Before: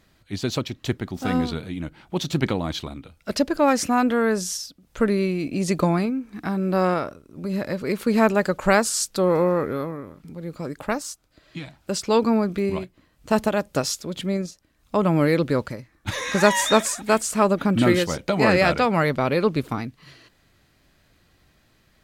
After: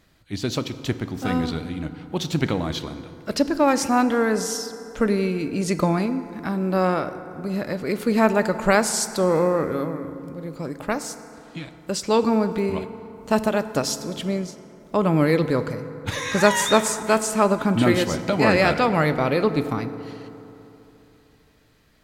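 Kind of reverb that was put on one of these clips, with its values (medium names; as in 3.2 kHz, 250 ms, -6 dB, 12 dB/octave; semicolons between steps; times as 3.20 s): FDN reverb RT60 3.2 s, high-frequency decay 0.45×, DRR 10.5 dB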